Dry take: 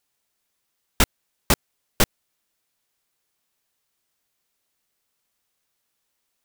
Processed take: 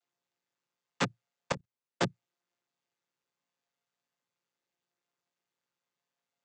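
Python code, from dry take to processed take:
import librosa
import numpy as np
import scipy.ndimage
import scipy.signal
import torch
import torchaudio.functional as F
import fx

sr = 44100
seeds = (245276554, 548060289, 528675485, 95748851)

y = fx.chord_vocoder(x, sr, chord='minor triad', root=46)
y = fx.highpass(y, sr, hz=560.0, slope=6)
y = fx.level_steps(y, sr, step_db=20, at=(1.52, 2.01))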